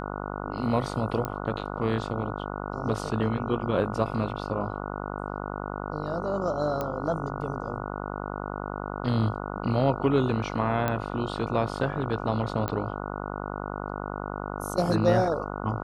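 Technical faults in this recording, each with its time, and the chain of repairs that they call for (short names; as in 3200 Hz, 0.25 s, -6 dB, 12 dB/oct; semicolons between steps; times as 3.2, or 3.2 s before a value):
buzz 50 Hz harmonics 29 -34 dBFS
1.25 pop -16 dBFS
6.81 pop -16 dBFS
10.88 pop -13 dBFS
12.68 pop -16 dBFS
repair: de-click; de-hum 50 Hz, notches 29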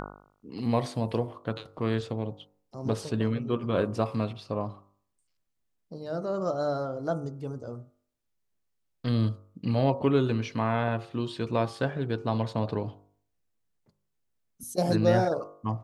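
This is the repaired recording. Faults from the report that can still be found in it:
1.25 pop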